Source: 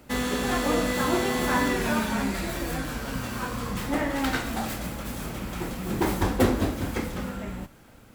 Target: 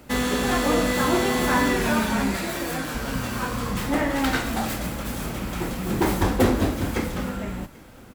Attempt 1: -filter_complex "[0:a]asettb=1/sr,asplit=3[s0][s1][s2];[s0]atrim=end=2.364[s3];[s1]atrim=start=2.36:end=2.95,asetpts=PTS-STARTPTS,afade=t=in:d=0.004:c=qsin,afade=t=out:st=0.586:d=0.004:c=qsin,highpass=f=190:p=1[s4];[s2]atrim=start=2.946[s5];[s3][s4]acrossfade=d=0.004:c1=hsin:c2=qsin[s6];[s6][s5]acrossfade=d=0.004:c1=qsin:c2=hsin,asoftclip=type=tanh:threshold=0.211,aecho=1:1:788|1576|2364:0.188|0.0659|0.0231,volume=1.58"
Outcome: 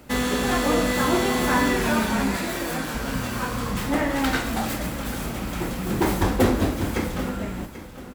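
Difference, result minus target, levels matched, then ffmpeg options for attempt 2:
echo-to-direct +10.5 dB
-filter_complex "[0:a]asettb=1/sr,asplit=3[s0][s1][s2];[s0]atrim=end=2.364[s3];[s1]atrim=start=2.36:end=2.95,asetpts=PTS-STARTPTS,afade=t=in:d=0.004:c=qsin,afade=t=out:st=0.586:d=0.004:c=qsin,highpass=f=190:p=1[s4];[s2]atrim=start=2.946[s5];[s3][s4]acrossfade=d=0.004:c1=hsin:c2=qsin[s6];[s6][s5]acrossfade=d=0.004:c1=qsin:c2=hsin,asoftclip=type=tanh:threshold=0.211,aecho=1:1:788|1576:0.0562|0.0197,volume=1.58"

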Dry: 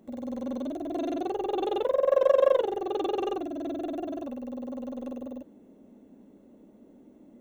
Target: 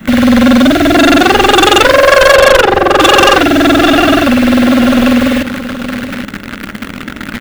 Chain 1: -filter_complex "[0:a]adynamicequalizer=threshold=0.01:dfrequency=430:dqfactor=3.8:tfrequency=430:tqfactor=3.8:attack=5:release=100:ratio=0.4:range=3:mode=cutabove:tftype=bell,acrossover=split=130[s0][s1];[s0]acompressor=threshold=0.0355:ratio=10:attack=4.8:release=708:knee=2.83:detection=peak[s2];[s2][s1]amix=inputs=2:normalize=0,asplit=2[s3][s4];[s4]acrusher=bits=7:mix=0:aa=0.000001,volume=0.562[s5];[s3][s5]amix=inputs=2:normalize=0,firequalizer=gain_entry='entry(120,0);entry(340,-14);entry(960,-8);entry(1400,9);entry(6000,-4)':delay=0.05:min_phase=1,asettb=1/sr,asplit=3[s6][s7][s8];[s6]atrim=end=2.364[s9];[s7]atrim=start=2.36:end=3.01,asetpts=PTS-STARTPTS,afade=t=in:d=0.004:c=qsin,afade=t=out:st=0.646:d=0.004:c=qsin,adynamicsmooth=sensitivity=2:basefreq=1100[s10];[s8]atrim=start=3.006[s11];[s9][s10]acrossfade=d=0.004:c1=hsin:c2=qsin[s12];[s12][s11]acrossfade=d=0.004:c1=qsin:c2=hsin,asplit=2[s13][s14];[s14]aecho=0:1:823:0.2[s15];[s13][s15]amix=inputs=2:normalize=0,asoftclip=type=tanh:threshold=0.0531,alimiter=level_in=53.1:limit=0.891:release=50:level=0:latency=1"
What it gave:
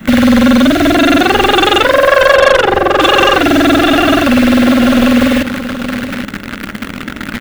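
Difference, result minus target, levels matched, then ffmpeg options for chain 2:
saturation: distortion -7 dB
-filter_complex "[0:a]adynamicequalizer=threshold=0.01:dfrequency=430:dqfactor=3.8:tfrequency=430:tqfactor=3.8:attack=5:release=100:ratio=0.4:range=3:mode=cutabove:tftype=bell,acrossover=split=130[s0][s1];[s0]acompressor=threshold=0.0355:ratio=10:attack=4.8:release=708:knee=2.83:detection=peak[s2];[s2][s1]amix=inputs=2:normalize=0,asplit=2[s3][s4];[s4]acrusher=bits=7:mix=0:aa=0.000001,volume=0.562[s5];[s3][s5]amix=inputs=2:normalize=0,firequalizer=gain_entry='entry(120,0);entry(340,-14);entry(960,-8);entry(1400,9);entry(6000,-4)':delay=0.05:min_phase=1,asettb=1/sr,asplit=3[s6][s7][s8];[s6]atrim=end=2.364[s9];[s7]atrim=start=2.36:end=3.01,asetpts=PTS-STARTPTS,afade=t=in:d=0.004:c=qsin,afade=t=out:st=0.646:d=0.004:c=qsin,adynamicsmooth=sensitivity=2:basefreq=1100[s10];[s8]atrim=start=3.006[s11];[s9][s10]acrossfade=d=0.004:c1=hsin:c2=qsin[s12];[s12][s11]acrossfade=d=0.004:c1=qsin:c2=hsin,asplit=2[s13][s14];[s14]aecho=0:1:823:0.2[s15];[s13][s15]amix=inputs=2:normalize=0,asoftclip=type=tanh:threshold=0.0188,alimiter=level_in=53.1:limit=0.891:release=50:level=0:latency=1"

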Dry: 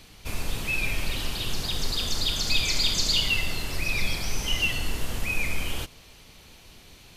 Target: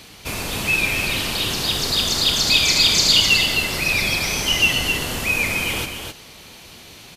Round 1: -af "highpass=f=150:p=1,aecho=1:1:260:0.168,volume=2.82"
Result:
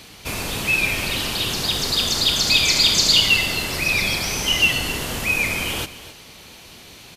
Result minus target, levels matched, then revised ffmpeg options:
echo-to-direct -9.5 dB
-af "highpass=f=150:p=1,aecho=1:1:260:0.501,volume=2.82"

